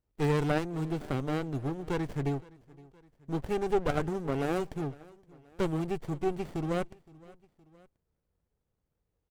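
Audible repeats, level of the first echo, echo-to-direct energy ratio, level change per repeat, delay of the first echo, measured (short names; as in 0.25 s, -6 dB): 2, -23.0 dB, -22.0 dB, -5.0 dB, 0.517 s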